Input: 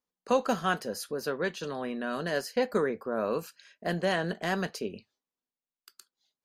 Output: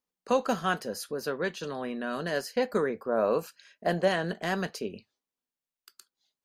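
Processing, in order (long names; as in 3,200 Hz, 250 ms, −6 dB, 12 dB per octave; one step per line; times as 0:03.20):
0:03.08–0:04.08: dynamic equaliser 670 Hz, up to +6 dB, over −42 dBFS, Q 1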